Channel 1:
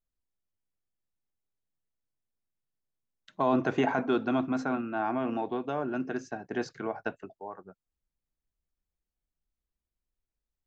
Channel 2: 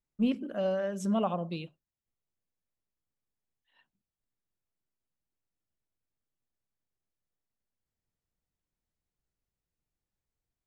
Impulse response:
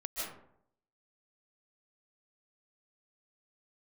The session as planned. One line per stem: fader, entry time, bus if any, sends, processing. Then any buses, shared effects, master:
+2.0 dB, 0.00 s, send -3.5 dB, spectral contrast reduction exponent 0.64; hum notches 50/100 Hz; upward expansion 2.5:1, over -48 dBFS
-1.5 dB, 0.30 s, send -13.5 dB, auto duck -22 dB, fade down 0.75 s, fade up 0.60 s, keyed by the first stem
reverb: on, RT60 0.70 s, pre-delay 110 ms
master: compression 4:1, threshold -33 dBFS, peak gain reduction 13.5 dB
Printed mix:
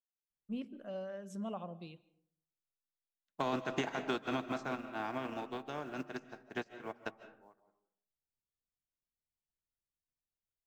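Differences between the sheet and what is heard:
stem 2 -1.5 dB -> -12.5 dB; reverb return -9.5 dB

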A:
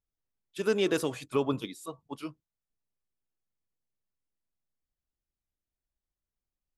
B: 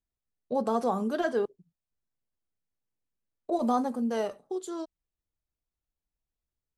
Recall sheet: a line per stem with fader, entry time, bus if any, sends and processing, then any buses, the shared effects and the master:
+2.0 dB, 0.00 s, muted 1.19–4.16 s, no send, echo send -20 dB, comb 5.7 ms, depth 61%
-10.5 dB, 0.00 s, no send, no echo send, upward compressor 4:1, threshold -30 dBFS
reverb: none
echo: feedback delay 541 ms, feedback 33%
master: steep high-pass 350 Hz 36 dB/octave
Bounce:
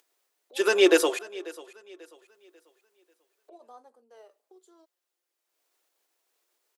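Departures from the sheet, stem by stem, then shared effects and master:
stem A +2.0 dB -> +8.5 dB; stem B -10.5 dB -> -22.0 dB

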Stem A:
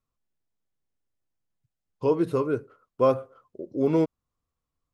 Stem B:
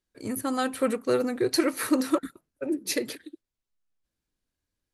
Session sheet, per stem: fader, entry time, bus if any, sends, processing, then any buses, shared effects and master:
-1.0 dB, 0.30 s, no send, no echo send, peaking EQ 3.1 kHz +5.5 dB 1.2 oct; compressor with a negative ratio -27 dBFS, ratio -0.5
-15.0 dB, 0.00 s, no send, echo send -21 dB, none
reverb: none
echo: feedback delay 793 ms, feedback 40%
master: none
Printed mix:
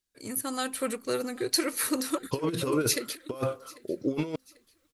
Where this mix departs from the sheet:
stem B -15.0 dB -> -6.5 dB; master: extra treble shelf 2.4 kHz +11.5 dB

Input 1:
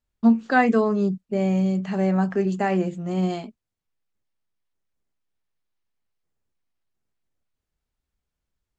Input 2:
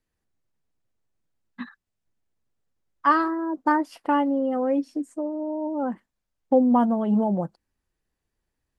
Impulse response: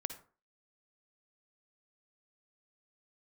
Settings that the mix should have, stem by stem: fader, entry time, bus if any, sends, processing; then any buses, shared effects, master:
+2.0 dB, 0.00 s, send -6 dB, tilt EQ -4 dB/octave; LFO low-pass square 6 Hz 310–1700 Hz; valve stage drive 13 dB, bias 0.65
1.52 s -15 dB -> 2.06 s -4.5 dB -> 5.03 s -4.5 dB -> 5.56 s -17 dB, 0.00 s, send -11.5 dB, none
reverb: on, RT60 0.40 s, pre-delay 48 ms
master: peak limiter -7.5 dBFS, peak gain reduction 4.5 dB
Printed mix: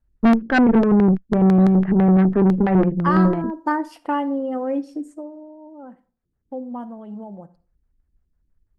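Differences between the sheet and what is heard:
stem 1: send off; reverb return +8.0 dB

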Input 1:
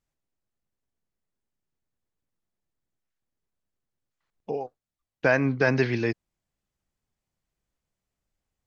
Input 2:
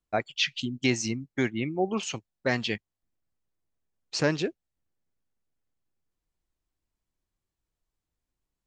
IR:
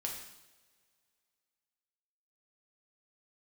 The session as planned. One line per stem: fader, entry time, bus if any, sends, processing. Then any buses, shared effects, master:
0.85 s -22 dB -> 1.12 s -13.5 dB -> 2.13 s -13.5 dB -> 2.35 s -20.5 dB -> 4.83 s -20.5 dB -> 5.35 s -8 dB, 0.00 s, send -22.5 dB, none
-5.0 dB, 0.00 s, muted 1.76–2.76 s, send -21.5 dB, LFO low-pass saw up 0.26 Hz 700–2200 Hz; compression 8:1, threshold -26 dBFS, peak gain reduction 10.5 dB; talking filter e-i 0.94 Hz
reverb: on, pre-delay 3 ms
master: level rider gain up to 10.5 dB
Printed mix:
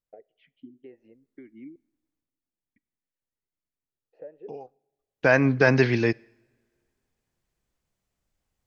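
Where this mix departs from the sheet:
stem 1 -22.0 dB -> -11.0 dB; master: missing level rider gain up to 10.5 dB

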